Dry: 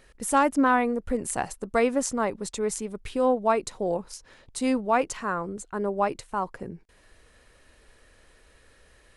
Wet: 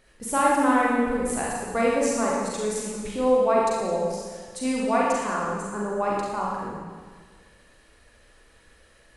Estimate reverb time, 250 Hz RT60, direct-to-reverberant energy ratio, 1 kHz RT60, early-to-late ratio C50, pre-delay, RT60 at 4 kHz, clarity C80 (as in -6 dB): 1.6 s, 1.7 s, -4.5 dB, 1.6 s, -1.5 dB, 37 ms, 1.6 s, 0.5 dB